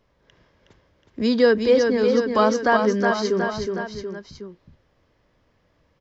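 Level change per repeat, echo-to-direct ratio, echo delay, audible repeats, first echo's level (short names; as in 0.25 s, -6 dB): -4.5 dB, -3.5 dB, 0.367 s, 3, -5.0 dB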